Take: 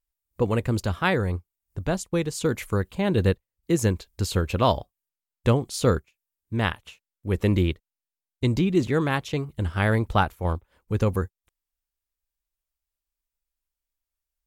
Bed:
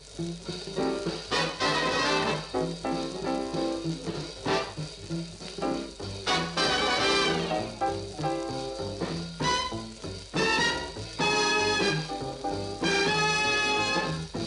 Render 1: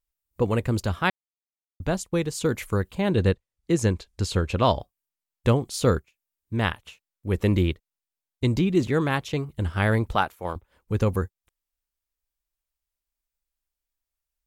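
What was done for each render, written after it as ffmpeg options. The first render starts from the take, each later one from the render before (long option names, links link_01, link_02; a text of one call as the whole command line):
ffmpeg -i in.wav -filter_complex "[0:a]asettb=1/sr,asplit=3[link_01][link_02][link_03];[link_01]atrim=end=3.124[link_04];[link_02]atrim=start=3.12:end=4.8,asetpts=PTS-STARTPTS,afade=type=in:duration=0.004:curve=qsin,afade=type=out:start_time=1.676:duration=0.004:curve=qsin,lowpass=8800[link_05];[link_03]atrim=start=4.796[link_06];[link_04][link_05]acrossfade=duration=0.004:curve1=hsin:curve2=qsin[link_07];[link_07][link_06]acrossfade=duration=0.004:curve1=qsin:curve2=hsin,asettb=1/sr,asplit=3[link_08][link_09][link_10];[link_08]atrim=end=10.154[link_11];[link_09]atrim=start=10.15:end=10.56,asetpts=PTS-STARTPTS,afade=type=in:duration=0.004:curve=qsin,afade=type=out:start_time=0.406:duration=0.004:curve=qsin,highpass=frequency=380:poles=1[link_12];[link_10]atrim=start=10.556[link_13];[link_11][link_12]acrossfade=duration=0.004:curve1=hsin:curve2=qsin[link_14];[link_14][link_13]acrossfade=duration=0.004:curve1=qsin:curve2=hsin,asplit=3[link_15][link_16][link_17];[link_15]atrim=end=1.1,asetpts=PTS-STARTPTS,afade=type=out:start_time=1.096:duration=0.004:curve=hsin[link_18];[link_16]atrim=start=1.1:end=1.8,asetpts=PTS-STARTPTS,volume=0[link_19];[link_17]atrim=start=1.8,asetpts=PTS-STARTPTS,afade=type=in:duration=0.004:curve=hsin[link_20];[link_18][link_19][link_20]concat=n=3:v=0:a=1" out.wav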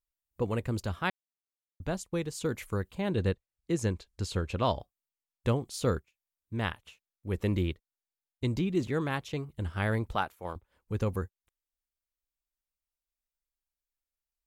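ffmpeg -i in.wav -af "volume=-7.5dB" out.wav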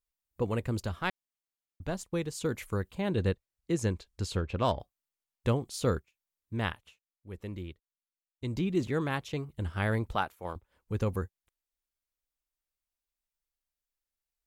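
ffmpeg -i in.wav -filter_complex "[0:a]asettb=1/sr,asplit=3[link_01][link_02][link_03];[link_01]atrim=end=0.884[link_04];[link_02]atrim=start=0.88:end=2.04,asetpts=PTS-STARTPTS,afade=type=in:duration=0.004:curve=qsin,afade=type=out:start_time=1.156:duration=0.004:curve=qsin,aeval=exprs='if(lt(val(0),0),0.708*val(0),val(0))':channel_layout=same[link_05];[link_03]atrim=start=2.036[link_06];[link_04][link_05]acrossfade=duration=0.004:curve1=hsin:curve2=qsin[link_07];[link_07][link_06]acrossfade=duration=0.004:curve1=qsin:curve2=hsin,asettb=1/sr,asplit=3[link_08][link_09][link_10];[link_08]atrim=end=4.364[link_11];[link_09]atrim=start=4.36:end=4.8,asetpts=PTS-STARTPTS,afade=type=in:duration=0.004:curve=qsin,afade=type=out:start_time=0.436:duration=0.004:curve=qsin,adynamicsmooth=sensitivity=4.5:basefreq=3100[link_12];[link_10]atrim=start=4.796[link_13];[link_11][link_12]acrossfade=duration=0.004:curve1=hsin:curve2=qsin[link_14];[link_14][link_13]acrossfade=duration=0.004:curve1=qsin:curve2=hsin,asplit=3[link_15][link_16][link_17];[link_15]atrim=end=7.01,asetpts=PTS-STARTPTS,afade=type=out:start_time=6.7:duration=0.31:silence=0.281838[link_18];[link_16]atrim=start=7.01:end=8.35,asetpts=PTS-STARTPTS,volume=-11dB[link_19];[link_17]atrim=start=8.35,asetpts=PTS-STARTPTS,afade=type=in:duration=0.31:silence=0.281838[link_20];[link_18][link_19][link_20]concat=n=3:v=0:a=1" out.wav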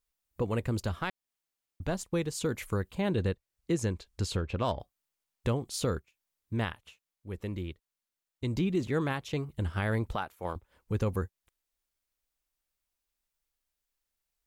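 ffmpeg -i in.wav -filter_complex "[0:a]asplit=2[link_01][link_02];[link_02]acompressor=threshold=-39dB:ratio=6,volume=-2.5dB[link_03];[link_01][link_03]amix=inputs=2:normalize=0,alimiter=limit=-19.5dB:level=0:latency=1:release=227" out.wav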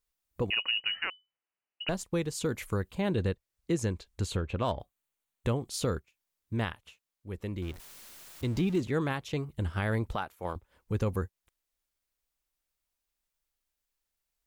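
ffmpeg -i in.wav -filter_complex "[0:a]asettb=1/sr,asplit=3[link_01][link_02][link_03];[link_01]atrim=end=0.504[link_04];[link_02]atrim=start=0.5:end=1.89,asetpts=PTS-STARTPTS,afade=type=in:duration=0.004:curve=qsin,afade=type=out:start_time=1.386:duration=0.004:curve=qsin,lowpass=frequency=2600:width_type=q:width=0.5098,lowpass=frequency=2600:width_type=q:width=0.6013,lowpass=frequency=2600:width_type=q:width=0.9,lowpass=frequency=2600:width_type=q:width=2.563,afreqshift=-3000[link_05];[link_03]atrim=start=1.886[link_06];[link_04][link_05]acrossfade=duration=0.004:curve1=hsin:curve2=qsin[link_07];[link_07][link_06]acrossfade=duration=0.004:curve1=qsin:curve2=hsin,asettb=1/sr,asplit=3[link_08][link_09][link_10];[link_08]atrim=end=4.144[link_11];[link_09]atrim=start=4.14:end=5.61,asetpts=PTS-STARTPTS,afade=type=in:duration=0.004:curve=qsin,afade=type=out:start_time=1.466:duration=0.004:curve=qsin,equalizer=frequency=5100:width=5.1:gain=-9[link_12];[link_10]atrim=start=5.606[link_13];[link_11][link_12]acrossfade=duration=0.004:curve1=hsin:curve2=qsin[link_14];[link_14][link_13]acrossfade=duration=0.004:curve1=qsin:curve2=hsin,asettb=1/sr,asplit=3[link_15][link_16][link_17];[link_15]atrim=end=7.624[link_18];[link_16]atrim=start=7.62:end=8.8,asetpts=PTS-STARTPTS,afade=type=in:duration=0.004:curve=qsin,afade=type=out:start_time=1.176:duration=0.004:curve=qsin,aeval=exprs='val(0)+0.5*0.00841*sgn(val(0))':channel_layout=same[link_19];[link_17]atrim=start=8.796[link_20];[link_18][link_19]acrossfade=duration=0.004:curve1=hsin:curve2=qsin[link_21];[link_21][link_20]acrossfade=duration=0.004:curve1=qsin:curve2=hsin" out.wav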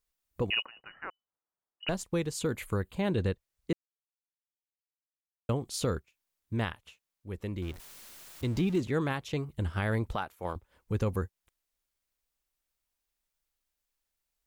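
ffmpeg -i in.wav -filter_complex "[0:a]asettb=1/sr,asplit=3[link_01][link_02][link_03];[link_01]atrim=end=0.624[link_04];[link_02]atrim=start=0.62:end=1.83,asetpts=PTS-STARTPTS,afade=type=in:duration=0.004:curve=qsin,afade=type=out:start_time=1.206:duration=0.004:curve=qsin,lowpass=frequency=1400:width=0.5412,lowpass=frequency=1400:width=1.3066[link_05];[link_03]atrim=start=1.826[link_06];[link_04][link_05]acrossfade=duration=0.004:curve1=hsin:curve2=qsin[link_07];[link_07][link_06]acrossfade=duration=0.004:curve1=qsin:curve2=hsin,asettb=1/sr,asplit=3[link_08][link_09][link_10];[link_08]atrim=end=2.414[link_11];[link_09]atrim=start=2.41:end=2.95,asetpts=PTS-STARTPTS,afade=type=in:duration=0.004:curve=qsin,afade=type=out:start_time=0.536:duration=0.004:curve=qsin,equalizer=frequency=5600:width=4.6:gain=-11[link_12];[link_10]atrim=start=2.946[link_13];[link_11][link_12]acrossfade=duration=0.004:curve1=hsin:curve2=qsin[link_14];[link_14][link_13]acrossfade=duration=0.004:curve1=qsin:curve2=hsin,asplit=3[link_15][link_16][link_17];[link_15]atrim=end=3.73,asetpts=PTS-STARTPTS,afade=type=out:start_time=3.726:duration=0.004:curve=hsin[link_18];[link_16]atrim=start=3.73:end=5.49,asetpts=PTS-STARTPTS,volume=0[link_19];[link_17]atrim=start=5.49,asetpts=PTS-STARTPTS,afade=type=in:duration=0.004:curve=hsin[link_20];[link_18][link_19][link_20]concat=n=3:v=0:a=1" out.wav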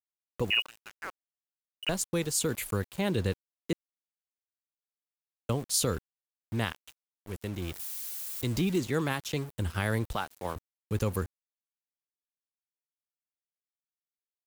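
ffmpeg -i in.wav -filter_complex "[0:a]acrossover=split=220[link_01][link_02];[link_02]crystalizer=i=2.5:c=0[link_03];[link_01][link_03]amix=inputs=2:normalize=0,aeval=exprs='val(0)*gte(abs(val(0)),0.00794)':channel_layout=same" out.wav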